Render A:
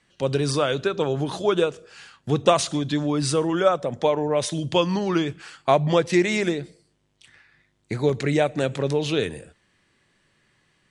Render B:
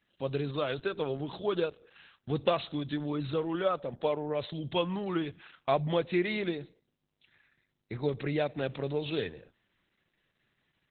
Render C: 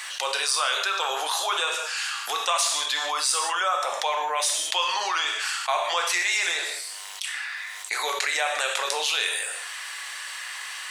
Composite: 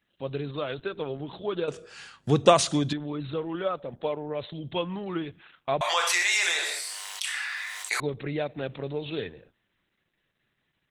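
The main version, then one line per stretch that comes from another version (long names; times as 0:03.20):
B
0:01.68–0:02.93: punch in from A
0:05.81–0:08.00: punch in from C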